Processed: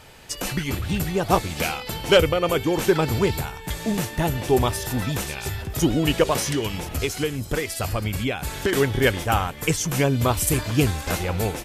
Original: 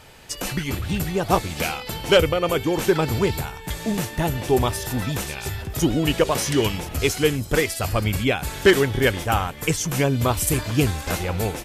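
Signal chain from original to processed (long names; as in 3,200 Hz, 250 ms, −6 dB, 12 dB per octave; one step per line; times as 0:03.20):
0:06.38–0:08.73: downward compressor 6 to 1, threshold −21 dBFS, peak gain reduction 11 dB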